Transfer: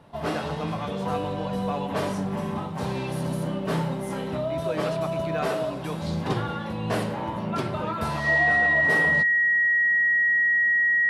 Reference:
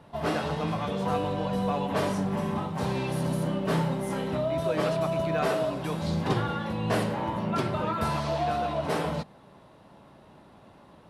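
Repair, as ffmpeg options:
-af "bandreject=f=1900:w=30"

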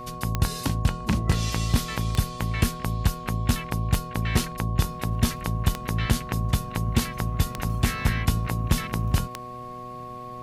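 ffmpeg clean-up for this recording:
-af "adeclick=t=4,bandreject=f=123.3:t=h:w=4,bandreject=f=246.6:t=h:w=4,bandreject=f=369.9:t=h:w=4,bandreject=f=493.2:t=h:w=4,bandreject=f=616.5:t=h:w=4,bandreject=f=739.8:t=h:w=4,bandreject=f=1100:w=30"

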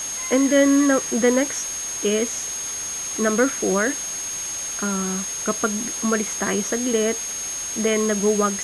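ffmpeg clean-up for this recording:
-af "bandreject=f=6500:w=30,afftdn=nr=30:nf=-29"

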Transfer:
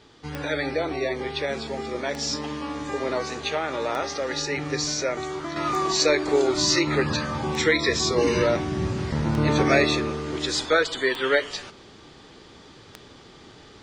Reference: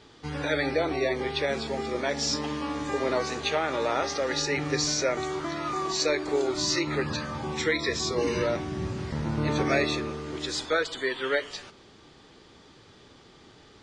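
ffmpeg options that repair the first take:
-af "adeclick=t=4,asetnsamples=n=441:p=0,asendcmd='5.56 volume volume -5.5dB',volume=1"

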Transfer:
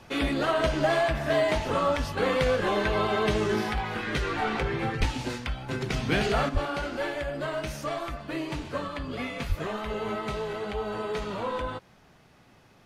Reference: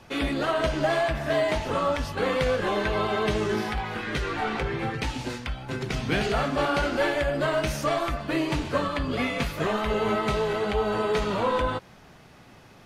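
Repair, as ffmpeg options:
-filter_complex "[0:a]asplit=3[s0][s1][s2];[s0]afade=t=out:st=4.99:d=0.02[s3];[s1]highpass=f=140:w=0.5412,highpass=f=140:w=1.3066,afade=t=in:st=4.99:d=0.02,afade=t=out:st=5.11:d=0.02[s4];[s2]afade=t=in:st=5.11:d=0.02[s5];[s3][s4][s5]amix=inputs=3:normalize=0,asplit=3[s6][s7][s8];[s6]afade=t=out:st=6.53:d=0.02[s9];[s7]highpass=f=140:w=0.5412,highpass=f=140:w=1.3066,afade=t=in:st=6.53:d=0.02,afade=t=out:st=6.65:d=0.02[s10];[s8]afade=t=in:st=6.65:d=0.02[s11];[s9][s10][s11]amix=inputs=3:normalize=0,asplit=3[s12][s13][s14];[s12]afade=t=out:st=9.48:d=0.02[s15];[s13]highpass=f=140:w=0.5412,highpass=f=140:w=1.3066,afade=t=in:st=9.48:d=0.02,afade=t=out:st=9.6:d=0.02[s16];[s14]afade=t=in:st=9.6:d=0.02[s17];[s15][s16][s17]amix=inputs=3:normalize=0,asetnsamples=n=441:p=0,asendcmd='6.49 volume volume 6.5dB',volume=1"

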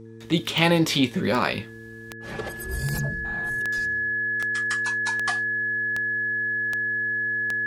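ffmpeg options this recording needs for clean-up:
-af "adeclick=t=4,bandreject=f=112.7:t=h:w=4,bandreject=f=225.4:t=h:w=4,bandreject=f=338.1:t=h:w=4,bandreject=f=450.8:t=h:w=4,bandreject=f=1700:w=30"

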